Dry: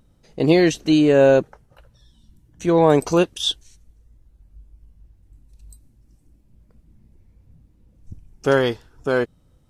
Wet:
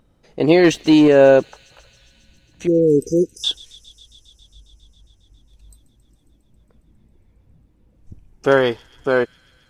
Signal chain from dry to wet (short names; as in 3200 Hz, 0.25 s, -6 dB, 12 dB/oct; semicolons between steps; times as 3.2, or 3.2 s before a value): tone controls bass -6 dB, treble -7 dB; 0.64–1.08 sample leveller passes 1; 2.67–3.44 brick-wall FIR band-stop 510–4900 Hz; on a send: thin delay 0.136 s, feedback 82%, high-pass 4500 Hz, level -15.5 dB; on the sum: gain +3.5 dB